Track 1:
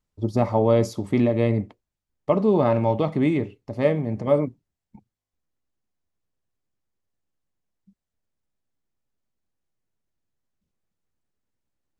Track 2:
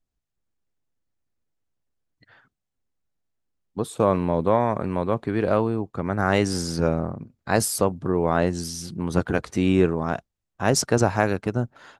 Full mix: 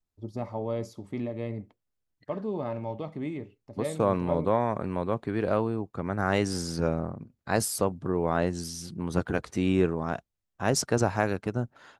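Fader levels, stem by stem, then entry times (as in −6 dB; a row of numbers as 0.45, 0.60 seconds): −13.0, −5.0 decibels; 0.00, 0.00 seconds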